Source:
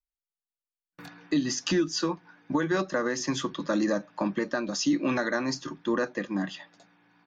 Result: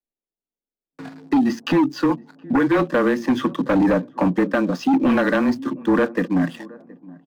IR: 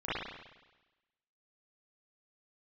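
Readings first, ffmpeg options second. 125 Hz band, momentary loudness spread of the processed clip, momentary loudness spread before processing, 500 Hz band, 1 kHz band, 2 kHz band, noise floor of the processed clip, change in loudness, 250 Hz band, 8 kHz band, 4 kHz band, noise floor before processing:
+9.0 dB, 7 LU, 6 LU, +8.0 dB, +10.0 dB, +6.5 dB, under -85 dBFS, +8.5 dB, +10.0 dB, n/a, -1.5 dB, under -85 dBFS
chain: -filter_complex "[0:a]lowpass=2.2k,lowshelf=f=160:t=q:w=1.5:g=-13,afreqshift=-21,acrossover=split=190|640[a][b][c];[c]aeval=exprs='sgn(val(0))*max(abs(val(0))-0.00211,0)':c=same[d];[a][b][d]amix=inputs=3:normalize=0,asplit=2[e][f];[f]adelay=720,lowpass=f=940:p=1,volume=-23.5dB,asplit=2[g][h];[h]adelay=720,lowpass=f=940:p=1,volume=0.36[i];[e][g][i]amix=inputs=3:normalize=0,aeval=exprs='0.237*sin(PI/2*2.24*val(0)/0.237)':c=same"

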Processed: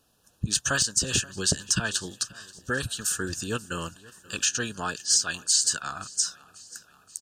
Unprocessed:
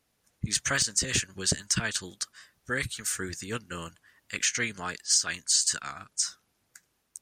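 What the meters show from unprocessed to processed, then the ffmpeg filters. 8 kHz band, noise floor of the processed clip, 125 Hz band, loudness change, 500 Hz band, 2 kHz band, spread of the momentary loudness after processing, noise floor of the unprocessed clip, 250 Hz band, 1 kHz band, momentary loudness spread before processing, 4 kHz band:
+2.5 dB, -65 dBFS, +3.0 dB, +2.0 dB, +3.5 dB, +0.5 dB, 16 LU, -75 dBFS, +3.5 dB, +4.0 dB, 13 LU, +2.5 dB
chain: -filter_complex "[0:a]asplit=2[a][b];[b]acompressor=threshold=-37dB:ratio=6,volume=2.5dB[c];[a][c]amix=inputs=2:normalize=0,asuperstop=centerf=2100:order=8:qfactor=2.8,aecho=1:1:532|1064|1596|2128|2660:0.0794|0.0477|0.0286|0.0172|0.0103"

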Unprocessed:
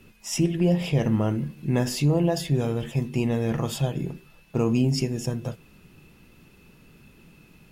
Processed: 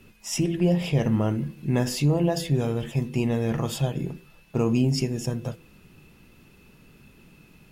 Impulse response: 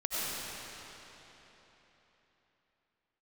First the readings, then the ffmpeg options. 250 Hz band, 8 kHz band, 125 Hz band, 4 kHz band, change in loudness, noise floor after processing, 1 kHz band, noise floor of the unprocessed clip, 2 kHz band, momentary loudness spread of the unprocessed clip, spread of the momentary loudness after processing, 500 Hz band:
-0.5 dB, 0.0 dB, 0.0 dB, 0.0 dB, 0.0 dB, -55 dBFS, 0.0 dB, -55 dBFS, 0.0 dB, 10 LU, 10 LU, 0.0 dB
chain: -af "bandreject=f=166.6:t=h:w=4,bandreject=f=333.2:t=h:w=4,bandreject=f=499.8:t=h:w=4"

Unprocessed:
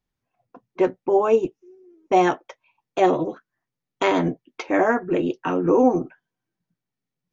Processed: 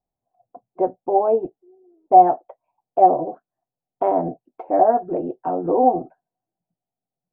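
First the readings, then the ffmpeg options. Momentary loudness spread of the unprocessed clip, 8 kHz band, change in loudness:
13 LU, n/a, +2.5 dB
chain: -af "lowpass=f=720:t=q:w=6.6,volume=-6dB"

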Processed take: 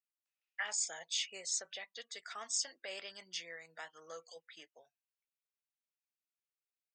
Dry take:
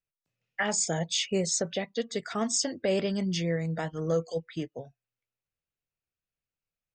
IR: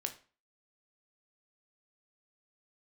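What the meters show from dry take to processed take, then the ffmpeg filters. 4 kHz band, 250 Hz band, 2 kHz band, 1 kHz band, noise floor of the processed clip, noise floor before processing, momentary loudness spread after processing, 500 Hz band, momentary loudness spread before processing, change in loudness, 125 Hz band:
-7.0 dB, -35.0 dB, -7.5 dB, -13.0 dB, under -85 dBFS, under -85 dBFS, 16 LU, -22.0 dB, 9 LU, -10.0 dB, under -40 dB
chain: -af "highpass=1.2k,volume=-7dB"

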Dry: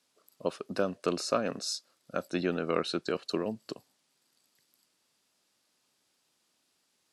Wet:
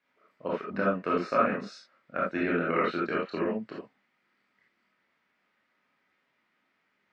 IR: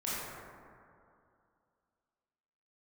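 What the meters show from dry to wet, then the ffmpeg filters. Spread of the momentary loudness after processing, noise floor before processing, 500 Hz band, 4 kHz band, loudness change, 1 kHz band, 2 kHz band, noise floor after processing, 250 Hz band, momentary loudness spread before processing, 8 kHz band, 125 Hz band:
13 LU, -75 dBFS, +2.0 dB, -9.0 dB, +3.5 dB, +7.5 dB, +8.0 dB, -75 dBFS, +3.0 dB, 8 LU, under -15 dB, +2.0 dB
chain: -filter_complex "[0:a]lowpass=f=2k:t=q:w=2.9[a];[1:a]atrim=start_sample=2205,atrim=end_sample=3969[b];[a][b]afir=irnorm=-1:irlink=0"

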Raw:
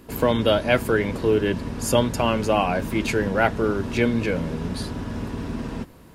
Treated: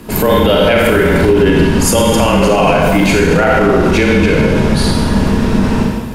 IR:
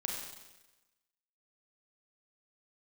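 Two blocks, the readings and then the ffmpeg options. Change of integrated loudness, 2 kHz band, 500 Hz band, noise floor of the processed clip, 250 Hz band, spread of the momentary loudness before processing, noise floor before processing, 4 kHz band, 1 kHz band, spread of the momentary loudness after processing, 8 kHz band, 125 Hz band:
+12.0 dB, +12.0 dB, +11.5 dB, -18 dBFS, +13.0 dB, 10 LU, -47 dBFS, +12.0 dB, +11.0 dB, 3 LU, +14.5 dB, +13.0 dB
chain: -filter_complex "[0:a]afreqshift=-28[a];[1:a]atrim=start_sample=2205,asetrate=37485,aresample=44100[b];[a][b]afir=irnorm=-1:irlink=0,alimiter=level_in=15.5dB:limit=-1dB:release=50:level=0:latency=1,volume=-1dB"

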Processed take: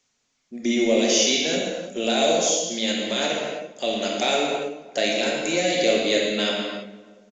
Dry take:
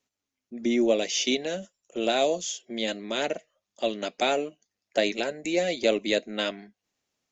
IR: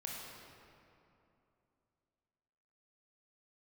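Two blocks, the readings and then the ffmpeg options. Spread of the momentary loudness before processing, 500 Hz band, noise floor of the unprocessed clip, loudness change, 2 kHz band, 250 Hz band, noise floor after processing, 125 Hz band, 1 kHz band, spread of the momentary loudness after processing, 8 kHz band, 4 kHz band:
10 LU, +4.0 dB, under -85 dBFS, +5.0 dB, +6.0 dB, +4.5 dB, -72 dBFS, +6.5 dB, +4.5 dB, 10 LU, n/a, +7.5 dB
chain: -filter_complex "[0:a]highshelf=f=3.9k:g=11,asplit=2[a][b];[b]alimiter=limit=-18.5dB:level=0:latency=1,volume=2dB[c];[a][c]amix=inputs=2:normalize=0,asplit=2[d][e];[e]adelay=342,lowpass=f=1.3k:p=1,volume=-18dB,asplit=2[f][g];[g]adelay=342,lowpass=f=1.3k:p=1,volume=0.36,asplit=2[h][i];[i]adelay=342,lowpass=f=1.3k:p=1,volume=0.36[j];[d][f][h][j]amix=inputs=4:normalize=0[k];[1:a]atrim=start_sample=2205,afade=t=out:st=0.4:d=0.01,atrim=end_sample=18081[l];[k][l]afir=irnorm=-1:irlink=0" -ar 16000 -c:a pcm_alaw

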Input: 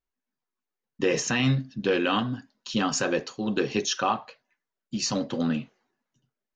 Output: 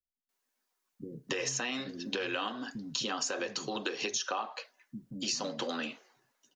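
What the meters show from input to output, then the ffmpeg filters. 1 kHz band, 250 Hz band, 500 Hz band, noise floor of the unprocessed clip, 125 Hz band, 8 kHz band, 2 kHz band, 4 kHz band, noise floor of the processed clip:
-8.0 dB, -12.5 dB, -9.5 dB, under -85 dBFS, -18.5 dB, -3.5 dB, -6.0 dB, -3.5 dB, -83 dBFS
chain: -filter_complex "[0:a]lowshelf=f=170:g=-6.5,acrossover=split=190[a][b];[b]adelay=290[c];[a][c]amix=inputs=2:normalize=0,acompressor=threshold=-33dB:ratio=6,bass=f=250:g=-12,treble=f=4k:g=5,acrossover=split=160|690[d][e][f];[d]acompressor=threshold=-59dB:ratio=4[g];[e]acompressor=threshold=-45dB:ratio=4[h];[f]acompressor=threshold=-40dB:ratio=4[i];[g][h][i]amix=inputs=3:normalize=0,volume=7.5dB"

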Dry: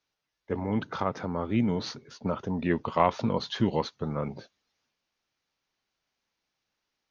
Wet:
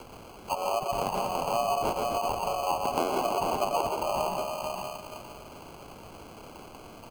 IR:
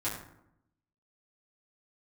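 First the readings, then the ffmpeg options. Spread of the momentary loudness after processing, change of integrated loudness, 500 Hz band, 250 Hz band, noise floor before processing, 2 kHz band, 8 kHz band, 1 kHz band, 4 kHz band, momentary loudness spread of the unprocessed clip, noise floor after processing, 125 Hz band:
18 LU, +0.5 dB, +2.5 dB, -9.5 dB, -84 dBFS, +0.5 dB, n/a, +5.5 dB, +2.0 dB, 10 LU, -47 dBFS, -10.5 dB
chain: -filter_complex "[0:a]aexciter=amount=7.8:drive=9.2:freq=5.2k,acompressor=mode=upward:threshold=-35dB:ratio=2.5,afreqshift=470,equalizer=f=2.7k:t=o:w=0.68:g=-13,bandreject=f=650:w=18,asplit=2[a][b];[b]adelay=461,lowpass=f=1.4k:p=1,volume=-5dB,asplit=2[c][d];[d]adelay=461,lowpass=f=1.4k:p=1,volume=0.27,asplit=2[e][f];[f]adelay=461,lowpass=f=1.4k:p=1,volume=0.27,asplit=2[g][h];[h]adelay=461,lowpass=f=1.4k:p=1,volume=0.27[i];[a][c][e][g][i]amix=inputs=5:normalize=0,asplit=2[j][k];[1:a]atrim=start_sample=2205,adelay=112[l];[k][l]afir=irnorm=-1:irlink=0,volume=-8dB[m];[j][m]amix=inputs=2:normalize=0,acrusher=samples=24:mix=1:aa=0.000001,acrossover=split=380|900[n][o][p];[n]acompressor=threshold=-42dB:ratio=4[q];[o]acompressor=threshold=-31dB:ratio=4[r];[p]acompressor=threshold=-41dB:ratio=4[s];[q][r][s]amix=inputs=3:normalize=0,volume=4dB"

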